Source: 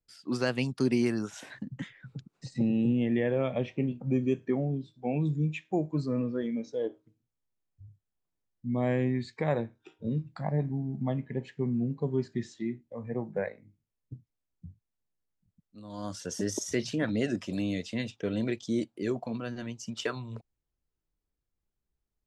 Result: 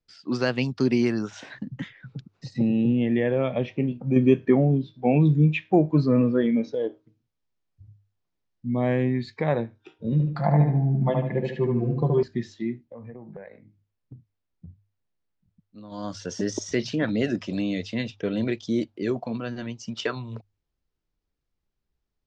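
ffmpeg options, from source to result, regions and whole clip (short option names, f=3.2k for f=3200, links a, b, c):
-filter_complex "[0:a]asettb=1/sr,asplit=3[a][b][c];[a]atrim=end=4.164[d];[b]atrim=start=4.16:end=6.75,asetpts=PTS-STARTPTS,afade=t=in:d=0.004:c=qsin,afade=t=out:st=2.586:d=0.004:c=qsin,aemphasis=mode=production:type=cd,acontrast=51,lowpass=3.1k[e];[c]atrim=start=6.746[f];[d][e]acrossfade=d=0.004:c1=hsin:c2=qsin[g];[g][f]acrossfade=d=0.004:c1=qsin:c2=hsin,asettb=1/sr,asplit=3[h][i][j];[h]atrim=end=10.124[k];[i]atrim=start=10.12:end=12.23,asetpts=PTS-STARTPTS,afade=t=in:d=0.004:c=qsin,afade=t=out:st=2.106:d=0.004:c=qsin,equalizer=f=860:t=o:w=2.1:g=4.5,aecho=1:1:5.8:0.75,atrim=end_sample=93051,asplit=2[l][m];[m]adelay=74,lowpass=f=3.1k:p=1,volume=-3dB,asplit=2[n][o];[o]adelay=74,lowpass=f=3.1k:p=1,volume=0.43,asplit=2[p][q];[q]adelay=74,lowpass=f=3.1k:p=1,volume=0.43,asplit=2[r][s];[s]adelay=74,lowpass=f=3.1k:p=1,volume=0.43,asplit=2[t][u];[u]adelay=74,lowpass=f=3.1k:p=1,volume=0.43,asplit=2[v][w];[w]adelay=74,lowpass=f=3.1k:p=1,volume=0.43[x];[l][n][p][r][t][v][x]amix=inputs=7:normalize=0,atrim=end_sample=93051[y];[j]atrim=start=12.226[z];[k][y]acrossfade=d=0.004:c1=hsin:c2=qsin[aa];[aa][z]acrossfade=d=0.004:c1=qsin:c2=hsin,asettb=1/sr,asplit=3[ab][ac][ad];[ab]atrim=end=12.844[ae];[ac]atrim=start=12.84:end=15.92,asetpts=PTS-STARTPTS,afade=t=in:d=0.004:c=qsin,afade=t=out:st=3.076:d=0.004:c=qsin,highshelf=f=5.4k:g=-8.5,acompressor=threshold=-41dB:ratio=16:attack=3.2:release=140:knee=1:detection=peak[af];[ad]atrim=start=15.916[ag];[ae][af]acrossfade=d=0.004:c1=hsin:c2=qsin[ah];[ah][ag]acrossfade=d=0.004:c1=qsin:c2=hsin,lowpass=f=5.8k:w=0.5412,lowpass=f=5.8k:w=1.3066,bandreject=f=50:t=h:w=6,bandreject=f=100:t=h:w=6,volume=4.5dB"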